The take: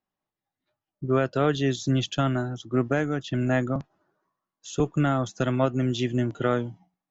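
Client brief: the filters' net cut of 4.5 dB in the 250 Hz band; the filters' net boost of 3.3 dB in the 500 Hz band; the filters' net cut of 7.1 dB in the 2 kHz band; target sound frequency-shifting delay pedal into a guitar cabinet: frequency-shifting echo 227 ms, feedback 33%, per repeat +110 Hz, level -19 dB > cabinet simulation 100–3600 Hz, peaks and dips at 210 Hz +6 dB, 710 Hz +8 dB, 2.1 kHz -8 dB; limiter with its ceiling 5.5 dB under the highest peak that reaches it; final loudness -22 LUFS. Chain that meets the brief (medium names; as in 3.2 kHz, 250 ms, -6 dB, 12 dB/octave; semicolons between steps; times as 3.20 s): peaking EQ 250 Hz -8 dB; peaking EQ 500 Hz +4 dB; peaking EQ 2 kHz -8.5 dB; peak limiter -16.5 dBFS; frequency-shifting echo 227 ms, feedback 33%, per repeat +110 Hz, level -19 dB; cabinet simulation 100–3600 Hz, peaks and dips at 210 Hz +6 dB, 710 Hz +8 dB, 2.1 kHz -8 dB; trim +5.5 dB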